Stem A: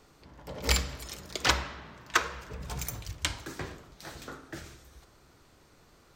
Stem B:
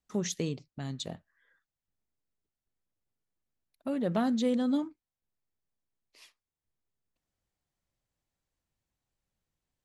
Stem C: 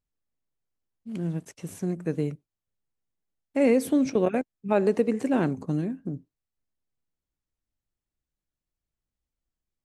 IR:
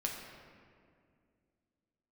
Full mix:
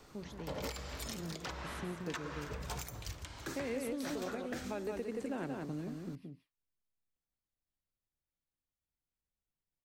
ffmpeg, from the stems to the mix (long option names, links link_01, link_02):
-filter_complex "[0:a]alimiter=limit=-17dB:level=0:latency=1:release=272,volume=1dB[link_01];[1:a]equalizer=frequency=6600:width_type=o:width=0.72:gain=-14.5,volume=-14dB,asplit=2[link_02][link_03];[link_03]volume=-8dB[link_04];[2:a]volume=-10.5dB,asplit=2[link_05][link_06];[link_06]volume=-6dB[link_07];[link_04][link_07]amix=inputs=2:normalize=0,aecho=0:1:177:1[link_08];[link_01][link_02][link_05][link_08]amix=inputs=4:normalize=0,acrossover=split=350|1200[link_09][link_10][link_11];[link_09]acompressor=threshold=-41dB:ratio=4[link_12];[link_10]acompressor=threshold=-37dB:ratio=4[link_13];[link_11]acompressor=threshold=-39dB:ratio=4[link_14];[link_12][link_13][link_14]amix=inputs=3:normalize=0,alimiter=level_in=5dB:limit=-24dB:level=0:latency=1:release=200,volume=-5dB"